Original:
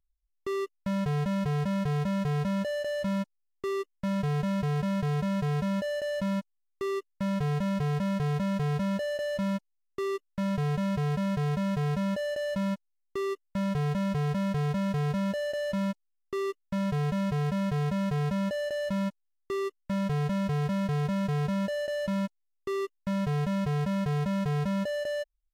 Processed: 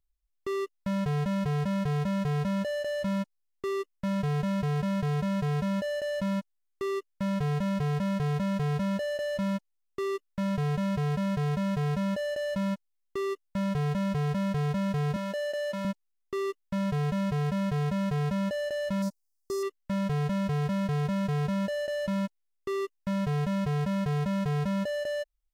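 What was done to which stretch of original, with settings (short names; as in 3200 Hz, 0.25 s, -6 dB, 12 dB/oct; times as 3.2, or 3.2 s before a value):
15.16–15.85 HPF 270 Hz
19.02–19.63 EQ curve 820 Hz 0 dB, 2900 Hz -16 dB, 5000 Hz +10 dB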